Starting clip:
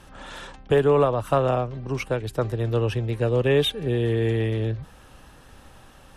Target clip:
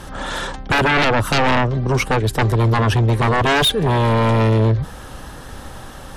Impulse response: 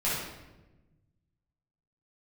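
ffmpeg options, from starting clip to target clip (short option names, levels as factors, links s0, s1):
-af "equalizer=f=2600:t=o:w=0.33:g=-6.5,aeval=exprs='0.376*sin(PI/2*5.01*val(0)/0.376)':c=same,volume=0.668"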